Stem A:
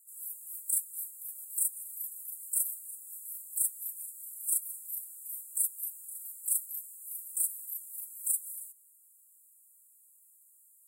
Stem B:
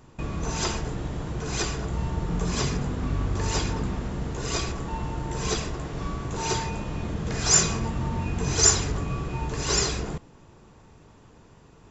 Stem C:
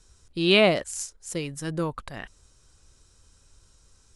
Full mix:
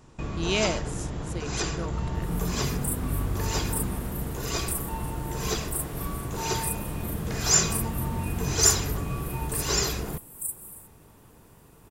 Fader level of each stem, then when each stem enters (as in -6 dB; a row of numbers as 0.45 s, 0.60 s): -2.5 dB, -1.5 dB, -8.0 dB; 2.15 s, 0.00 s, 0.00 s